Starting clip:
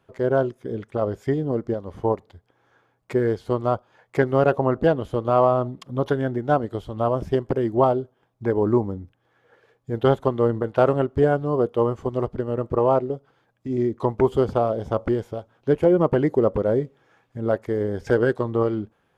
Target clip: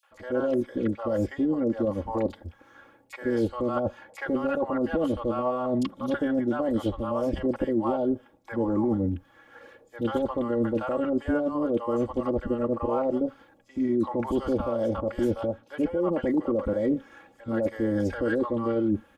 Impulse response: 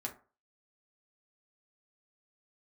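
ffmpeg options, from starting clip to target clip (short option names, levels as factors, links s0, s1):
-filter_complex "[0:a]aecho=1:1:3.6:0.91,alimiter=limit=0.251:level=0:latency=1:release=34,areverse,acompressor=threshold=0.0355:ratio=6,areverse,acrossover=split=710|4400[s0][s1][s2];[s1]adelay=30[s3];[s0]adelay=110[s4];[s4][s3][s2]amix=inputs=3:normalize=0,volume=2.24"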